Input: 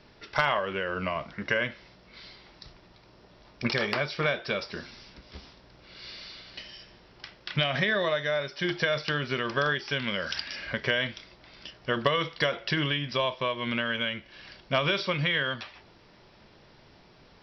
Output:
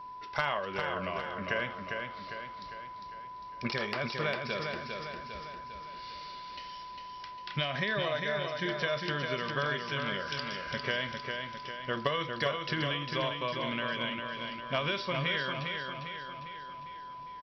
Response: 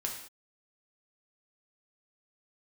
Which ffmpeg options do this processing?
-af "aecho=1:1:402|804|1206|1608|2010|2412:0.562|0.287|0.146|0.0746|0.038|0.0194,aeval=exprs='val(0)+0.0158*sin(2*PI*1000*n/s)':channel_layout=same,volume=-6dB"

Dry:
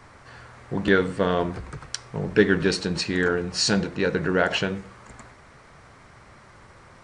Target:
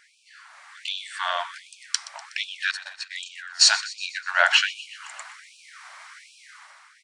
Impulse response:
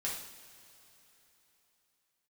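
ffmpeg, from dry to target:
-filter_complex "[0:a]asettb=1/sr,asplit=3[link_01][link_02][link_03];[link_01]atrim=end=2.714[link_04];[link_02]atrim=start=2.71:end=4.41,asetpts=PTS-STARTPTS,afade=type=in:duration=0.004:curve=qsin,afade=type=out:start_time=1.696:duration=0.004:curve=qsin,agate=range=-25dB:threshold=-23dB:ratio=16:detection=peak[link_05];[link_03]atrim=start=4.406[link_06];[link_04][link_05]acrossfade=duration=0.004:curve1=hsin:curve2=qsin[link_07];[link_07][link_06]acrossfade=duration=0.004:curve1=qsin:curve2=hsin,equalizer=frequency=560:width=0.84:gain=-11,dynaudnorm=framelen=110:gausssize=11:maxgain=11dB,aecho=1:1:123|246|369|492|615|738:0.141|0.0848|0.0509|0.0305|0.0183|0.011,afftfilt=real='re*gte(b*sr/1024,550*pow(2400/550,0.5+0.5*sin(2*PI*1.3*pts/sr)))':imag='im*gte(b*sr/1024,550*pow(2400/550,0.5+0.5*sin(2*PI*1.3*pts/sr)))':win_size=1024:overlap=0.75"

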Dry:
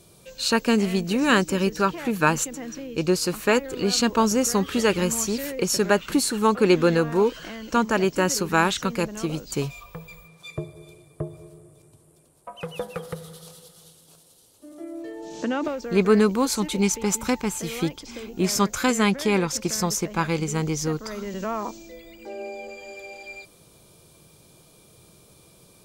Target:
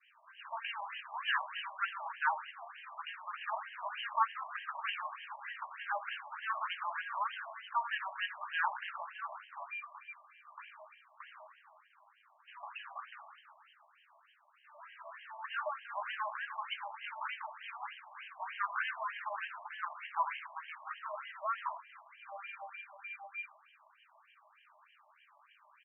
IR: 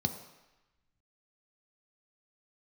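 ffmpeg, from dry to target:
-filter_complex "[0:a]aeval=exprs='val(0)+0.5*0.0266*sgn(val(0))':channel_layout=same,agate=range=-33dB:threshold=-30dB:ratio=3:detection=peak,asoftclip=type=hard:threshold=-19.5dB,flanger=delay=9.7:depth=6.8:regen=-19:speed=0.41:shape=sinusoidal,acrusher=bits=3:mode=log:mix=0:aa=0.000001,aecho=1:1:83:0.211,asplit=2[link_01][link_02];[1:a]atrim=start_sample=2205,lowpass=6200[link_03];[link_02][link_03]afir=irnorm=-1:irlink=0,volume=-12.5dB[link_04];[link_01][link_04]amix=inputs=2:normalize=0,afftfilt=real='re*between(b*sr/1024,820*pow(2300/820,0.5+0.5*sin(2*PI*3.3*pts/sr))/1.41,820*pow(2300/820,0.5+0.5*sin(2*PI*3.3*pts/sr))*1.41)':imag='im*between(b*sr/1024,820*pow(2300/820,0.5+0.5*sin(2*PI*3.3*pts/sr))/1.41,820*pow(2300/820,0.5+0.5*sin(2*PI*3.3*pts/sr))*1.41)':win_size=1024:overlap=0.75,volume=1dB"

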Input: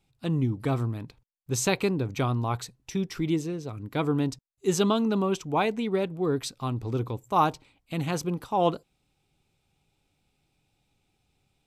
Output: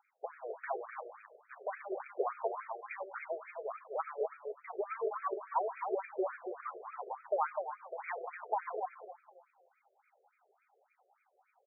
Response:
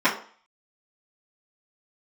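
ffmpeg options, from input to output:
-filter_complex "[0:a]acrossover=split=250|3000[link_01][link_02][link_03];[link_02]acompressor=threshold=-47dB:ratio=2.5[link_04];[link_01][link_04][link_03]amix=inputs=3:normalize=0,asplit=2[link_05][link_06];[link_06]highpass=frequency=720:poles=1,volume=15dB,asoftclip=type=tanh:threshold=-16.5dB[link_07];[link_05][link_07]amix=inputs=2:normalize=0,lowpass=frequency=1200:poles=1,volume=-6dB,aphaser=in_gain=1:out_gain=1:delay=4.9:decay=0.57:speed=1:type=triangular,acrossover=split=2500[link_08][link_09];[link_08]aeval=exprs='clip(val(0),-1,0.0335)':channel_layout=same[link_10];[link_10][link_09]amix=inputs=2:normalize=0,asplit=2[link_11][link_12];[link_12]adelay=252,lowpass=frequency=2400:poles=1,volume=-5.5dB,asplit=2[link_13][link_14];[link_14]adelay=252,lowpass=frequency=2400:poles=1,volume=0.27,asplit=2[link_15][link_16];[link_16]adelay=252,lowpass=frequency=2400:poles=1,volume=0.27,asplit=2[link_17][link_18];[link_18]adelay=252,lowpass=frequency=2400:poles=1,volume=0.27[link_19];[link_11][link_13][link_15][link_17][link_19]amix=inputs=5:normalize=0,asplit=2[link_20][link_21];[1:a]atrim=start_sample=2205,adelay=89[link_22];[link_21][link_22]afir=irnorm=-1:irlink=0,volume=-33dB[link_23];[link_20][link_23]amix=inputs=2:normalize=0,afftfilt=real='re*between(b*sr/1024,500*pow(1800/500,0.5+0.5*sin(2*PI*3.5*pts/sr))/1.41,500*pow(1800/500,0.5+0.5*sin(2*PI*3.5*pts/sr))*1.41)':imag='im*between(b*sr/1024,500*pow(1800/500,0.5+0.5*sin(2*PI*3.5*pts/sr))/1.41,500*pow(1800/500,0.5+0.5*sin(2*PI*3.5*pts/sr))*1.41)':win_size=1024:overlap=0.75,volume=4.5dB"

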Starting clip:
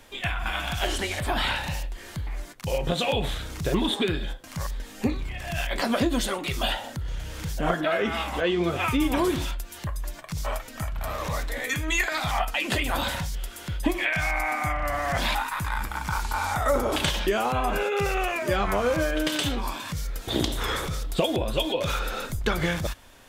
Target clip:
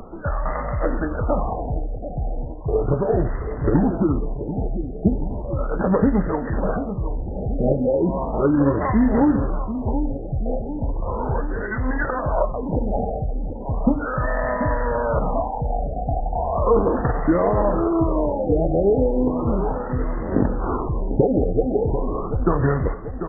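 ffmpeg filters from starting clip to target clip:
ffmpeg -i in.wav -af "firequalizer=gain_entry='entry(560,0);entry(1400,-4);entry(2700,-12);entry(4400,3);entry(7000,9)':delay=0.05:min_phase=1,aecho=1:1:737|1474|2211|2948|3685|4422|5159:0.316|0.187|0.11|0.0649|0.0383|0.0226|0.0133,acompressor=mode=upward:threshold=-33dB:ratio=2.5,acrusher=bits=3:mode=log:mix=0:aa=0.000001,asetrate=36028,aresample=44100,atempo=1.22405,afftfilt=real='re*lt(b*sr/1024,810*pow(2100/810,0.5+0.5*sin(2*PI*0.36*pts/sr)))':imag='im*lt(b*sr/1024,810*pow(2100/810,0.5+0.5*sin(2*PI*0.36*pts/sr)))':win_size=1024:overlap=0.75,volume=7dB" out.wav

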